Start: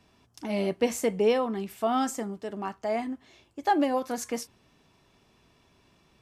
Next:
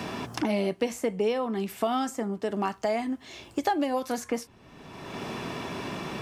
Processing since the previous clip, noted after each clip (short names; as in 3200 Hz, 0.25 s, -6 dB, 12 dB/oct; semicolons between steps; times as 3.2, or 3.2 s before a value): three-band squash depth 100%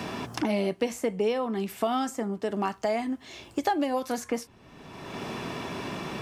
nothing audible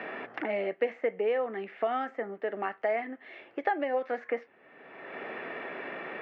speaker cabinet 480–2300 Hz, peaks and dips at 500 Hz +4 dB, 1000 Hz -10 dB, 1900 Hz +7 dB